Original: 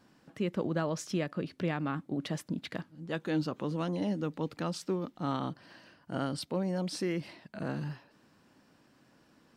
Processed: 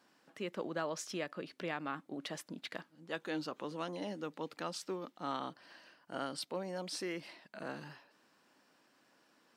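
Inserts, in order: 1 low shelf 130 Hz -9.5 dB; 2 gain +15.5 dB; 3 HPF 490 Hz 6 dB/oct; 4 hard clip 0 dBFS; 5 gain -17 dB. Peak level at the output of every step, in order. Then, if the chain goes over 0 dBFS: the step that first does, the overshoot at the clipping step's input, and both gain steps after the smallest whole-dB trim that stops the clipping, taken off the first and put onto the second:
-19.0, -3.5, -5.0, -5.0, -22.0 dBFS; no overload

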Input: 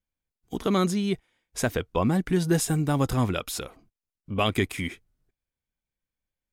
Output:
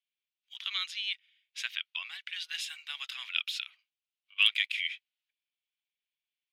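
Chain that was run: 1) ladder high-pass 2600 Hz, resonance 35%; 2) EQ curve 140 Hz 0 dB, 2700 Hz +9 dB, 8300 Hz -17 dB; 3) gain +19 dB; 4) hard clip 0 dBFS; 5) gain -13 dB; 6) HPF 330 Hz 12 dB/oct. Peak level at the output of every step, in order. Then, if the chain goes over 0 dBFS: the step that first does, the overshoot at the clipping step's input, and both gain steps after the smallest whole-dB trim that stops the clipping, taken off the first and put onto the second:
-20.0, -15.5, +3.5, 0.0, -13.0, -12.0 dBFS; step 3, 3.5 dB; step 3 +15 dB, step 5 -9 dB

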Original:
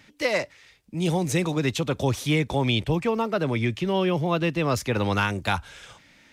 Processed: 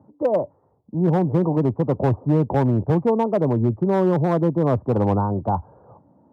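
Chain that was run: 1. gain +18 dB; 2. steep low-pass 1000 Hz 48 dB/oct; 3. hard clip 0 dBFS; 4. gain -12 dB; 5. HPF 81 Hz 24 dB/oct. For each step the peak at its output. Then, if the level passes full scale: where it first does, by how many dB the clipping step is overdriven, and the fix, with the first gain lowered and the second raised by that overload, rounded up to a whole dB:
+7.5, +6.0, 0.0, -12.0, -8.0 dBFS; step 1, 6.0 dB; step 1 +12 dB, step 4 -6 dB

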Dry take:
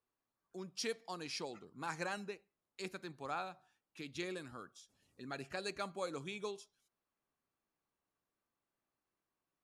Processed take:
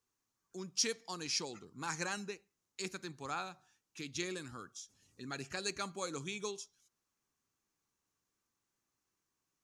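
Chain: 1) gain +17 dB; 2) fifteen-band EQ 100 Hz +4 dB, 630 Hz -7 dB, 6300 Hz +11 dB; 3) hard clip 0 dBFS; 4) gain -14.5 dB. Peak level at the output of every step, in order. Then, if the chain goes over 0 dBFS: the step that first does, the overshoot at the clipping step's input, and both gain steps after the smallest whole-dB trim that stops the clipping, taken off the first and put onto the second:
-8.5, -4.0, -4.0, -18.5 dBFS; no overload

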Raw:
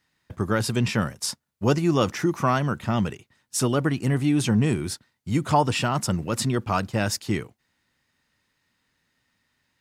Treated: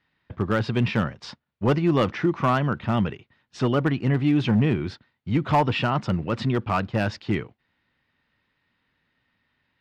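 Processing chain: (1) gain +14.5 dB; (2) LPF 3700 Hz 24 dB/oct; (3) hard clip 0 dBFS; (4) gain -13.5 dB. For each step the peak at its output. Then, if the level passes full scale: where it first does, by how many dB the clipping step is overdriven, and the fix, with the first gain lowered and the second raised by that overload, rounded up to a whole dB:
+8.0, +7.5, 0.0, -13.5 dBFS; step 1, 7.5 dB; step 1 +6.5 dB, step 4 -5.5 dB

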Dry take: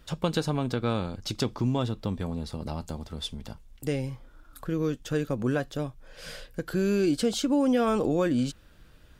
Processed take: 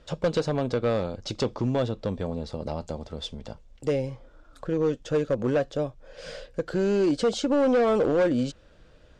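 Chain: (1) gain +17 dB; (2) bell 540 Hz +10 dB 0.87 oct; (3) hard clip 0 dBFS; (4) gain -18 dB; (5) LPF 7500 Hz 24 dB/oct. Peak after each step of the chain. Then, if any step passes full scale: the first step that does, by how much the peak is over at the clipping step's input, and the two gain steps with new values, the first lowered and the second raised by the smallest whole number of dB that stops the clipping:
+4.5, +9.0, 0.0, -18.0, -17.5 dBFS; step 1, 9.0 dB; step 1 +8 dB, step 4 -9 dB

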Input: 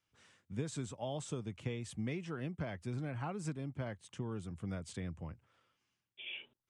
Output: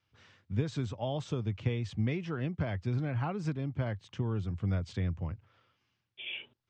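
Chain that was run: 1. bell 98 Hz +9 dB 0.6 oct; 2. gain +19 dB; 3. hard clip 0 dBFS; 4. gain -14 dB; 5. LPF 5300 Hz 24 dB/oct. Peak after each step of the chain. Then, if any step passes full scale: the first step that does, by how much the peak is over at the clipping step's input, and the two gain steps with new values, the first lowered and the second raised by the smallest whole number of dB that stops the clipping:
-22.5, -3.5, -3.5, -17.5, -17.5 dBFS; no overload

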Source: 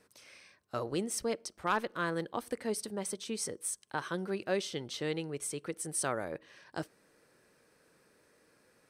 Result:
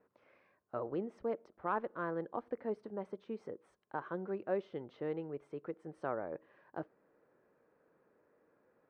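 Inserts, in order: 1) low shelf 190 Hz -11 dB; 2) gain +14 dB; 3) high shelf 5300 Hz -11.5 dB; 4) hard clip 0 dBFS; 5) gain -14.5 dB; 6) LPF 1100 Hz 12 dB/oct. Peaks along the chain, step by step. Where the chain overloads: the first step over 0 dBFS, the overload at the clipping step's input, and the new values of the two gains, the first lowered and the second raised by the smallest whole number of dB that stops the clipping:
-19.0, -5.0, -6.0, -6.0, -20.5, -22.5 dBFS; no overload

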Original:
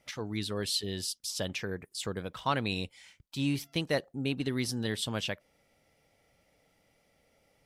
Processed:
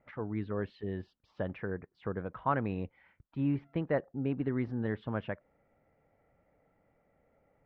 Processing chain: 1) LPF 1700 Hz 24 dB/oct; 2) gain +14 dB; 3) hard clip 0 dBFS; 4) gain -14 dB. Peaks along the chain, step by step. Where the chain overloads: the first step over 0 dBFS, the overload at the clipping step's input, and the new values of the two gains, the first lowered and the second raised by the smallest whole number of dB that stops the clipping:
-17.0, -3.0, -3.0, -17.0 dBFS; no overload

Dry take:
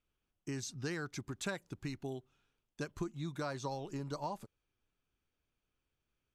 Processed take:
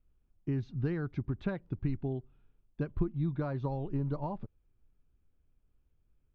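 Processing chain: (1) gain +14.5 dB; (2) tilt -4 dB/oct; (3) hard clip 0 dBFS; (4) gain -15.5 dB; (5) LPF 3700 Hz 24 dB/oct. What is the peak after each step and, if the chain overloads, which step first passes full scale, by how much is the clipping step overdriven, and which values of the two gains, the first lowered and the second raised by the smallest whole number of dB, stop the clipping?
-8.5, -1.5, -1.5, -17.0, -17.0 dBFS; no overload

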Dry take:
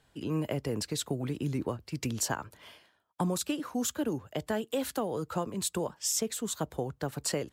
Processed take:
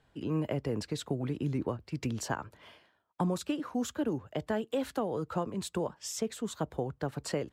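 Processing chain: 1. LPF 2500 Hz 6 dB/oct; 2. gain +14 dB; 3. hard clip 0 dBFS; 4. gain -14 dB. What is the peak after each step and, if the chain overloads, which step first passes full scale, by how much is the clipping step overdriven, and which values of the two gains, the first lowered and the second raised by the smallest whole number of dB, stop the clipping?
-17.5, -3.5, -3.5, -17.5 dBFS; no overload

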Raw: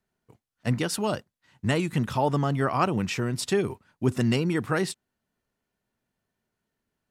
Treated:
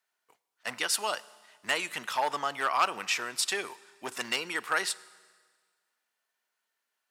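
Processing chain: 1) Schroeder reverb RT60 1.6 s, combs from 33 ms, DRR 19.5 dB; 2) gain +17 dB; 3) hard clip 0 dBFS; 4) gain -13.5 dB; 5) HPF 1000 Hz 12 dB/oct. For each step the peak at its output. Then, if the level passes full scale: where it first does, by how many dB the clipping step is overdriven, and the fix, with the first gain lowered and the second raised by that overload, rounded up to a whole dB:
-10.5, +6.5, 0.0, -13.5, -11.0 dBFS; step 2, 6.5 dB; step 2 +10 dB, step 4 -6.5 dB

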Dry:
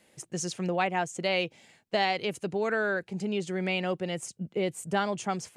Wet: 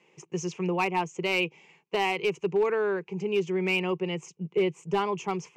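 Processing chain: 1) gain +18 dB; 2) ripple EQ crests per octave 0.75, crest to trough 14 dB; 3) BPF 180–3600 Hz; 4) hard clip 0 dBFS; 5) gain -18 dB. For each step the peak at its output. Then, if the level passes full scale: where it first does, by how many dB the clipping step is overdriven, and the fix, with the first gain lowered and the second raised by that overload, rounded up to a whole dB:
+4.0, +5.5, +5.5, 0.0, -18.0 dBFS; step 1, 5.5 dB; step 1 +12 dB, step 5 -12 dB

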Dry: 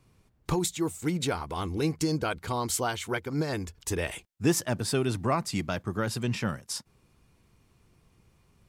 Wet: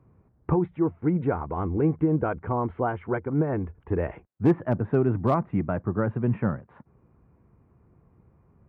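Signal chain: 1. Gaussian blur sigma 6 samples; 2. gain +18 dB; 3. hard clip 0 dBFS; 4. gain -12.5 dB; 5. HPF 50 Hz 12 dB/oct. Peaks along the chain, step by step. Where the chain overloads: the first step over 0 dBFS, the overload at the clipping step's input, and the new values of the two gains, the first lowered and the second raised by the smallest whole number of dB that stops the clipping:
-14.0, +4.0, 0.0, -12.5, -10.0 dBFS; step 2, 4.0 dB; step 2 +14 dB, step 4 -8.5 dB

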